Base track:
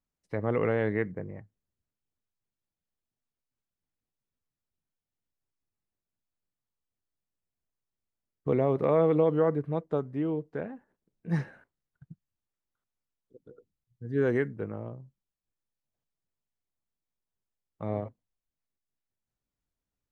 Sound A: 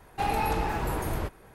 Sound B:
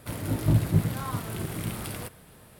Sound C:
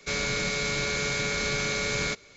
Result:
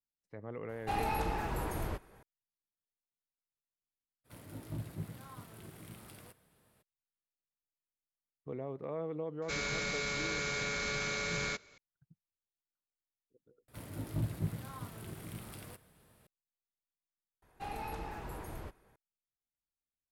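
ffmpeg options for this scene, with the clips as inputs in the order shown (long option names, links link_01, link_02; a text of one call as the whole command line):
ffmpeg -i bed.wav -i cue0.wav -i cue1.wav -i cue2.wav -filter_complex "[1:a]asplit=2[link_01][link_02];[2:a]asplit=2[link_03][link_04];[0:a]volume=-15.5dB[link_05];[link_03]lowshelf=frequency=97:gain=-5.5[link_06];[3:a]equalizer=frequency=1300:width=0.9:gain=4[link_07];[link_05]asplit=3[link_08][link_09][link_10];[link_08]atrim=end=13.684[link_11];[link_04]atrim=end=2.59,asetpts=PTS-STARTPTS,volume=-13dB[link_12];[link_09]atrim=start=16.266:end=17.424[link_13];[link_02]atrim=end=1.54,asetpts=PTS-STARTPTS,volume=-14dB[link_14];[link_10]atrim=start=18.956[link_15];[link_01]atrim=end=1.54,asetpts=PTS-STARTPTS,volume=-6.5dB,afade=type=in:duration=0.004:curve=hsin,afade=type=out:start_time=1.536:duration=0.004:curve=hsin,adelay=690[link_16];[link_06]atrim=end=2.59,asetpts=PTS-STARTPTS,volume=-17dB,afade=type=in:duration=0.02,afade=type=out:start_time=2.57:duration=0.02,adelay=4240[link_17];[link_07]atrim=end=2.36,asetpts=PTS-STARTPTS,volume=-9dB,afade=type=in:duration=0.004:curve=hsin,afade=type=out:start_time=2.356:duration=0.004:curve=hsin,adelay=9420[link_18];[link_11][link_12]acrossfade=duration=0.004:curve1=hsin:curve2=hsin[link_19];[link_19][link_13]acrossfade=duration=0.004:curve1=hsin:curve2=hsin[link_20];[link_20][link_14]acrossfade=duration=0.004:curve1=hsin:curve2=hsin[link_21];[link_21][link_15]acrossfade=duration=0.004:curve1=hsin:curve2=hsin[link_22];[link_22][link_16][link_17][link_18]amix=inputs=4:normalize=0" out.wav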